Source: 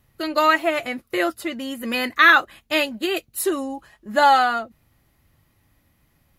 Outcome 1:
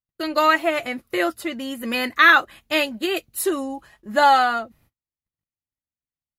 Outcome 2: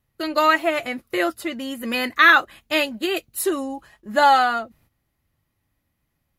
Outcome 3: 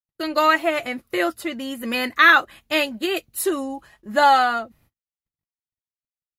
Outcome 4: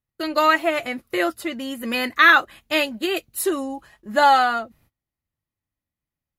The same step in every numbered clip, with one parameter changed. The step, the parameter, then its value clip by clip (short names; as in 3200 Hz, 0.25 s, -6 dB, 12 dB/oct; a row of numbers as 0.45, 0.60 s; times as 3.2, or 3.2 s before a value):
gate, range: -39, -11, -56, -26 dB